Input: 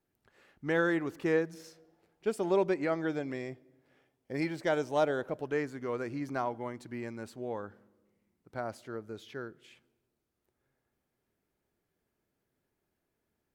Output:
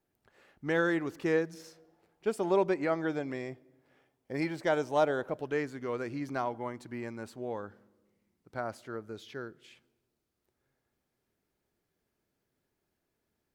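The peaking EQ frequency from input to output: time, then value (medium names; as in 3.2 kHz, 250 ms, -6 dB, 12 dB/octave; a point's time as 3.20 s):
peaking EQ +3 dB 1.1 oct
680 Hz
from 0.69 s 5.2 kHz
from 1.62 s 960 Hz
from 5.37 s 3.5 kHz
from 6.54 s 1 kHz
from 7.50 s 4.8 kHz
from 8.57 s 1.3 kHz
from 9.12 s 4.7 kHz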